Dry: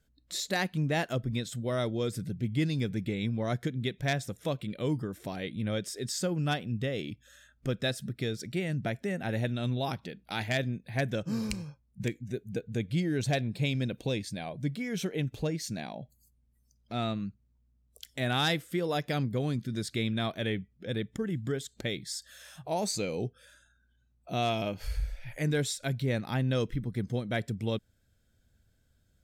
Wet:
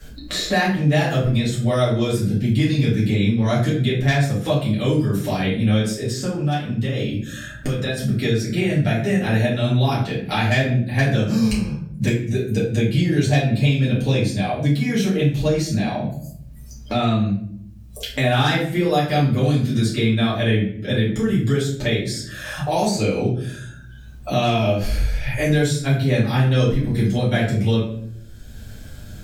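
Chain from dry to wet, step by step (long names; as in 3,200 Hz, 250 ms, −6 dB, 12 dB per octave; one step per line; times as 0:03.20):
0:05.89–0:07.97: downward compressor, threshold −37 dBFS, peak gain reduction 12 dB
rectangular room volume 58 cubic metres, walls mixed, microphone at 2.3 metres
multiband upward and downward compressor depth 70%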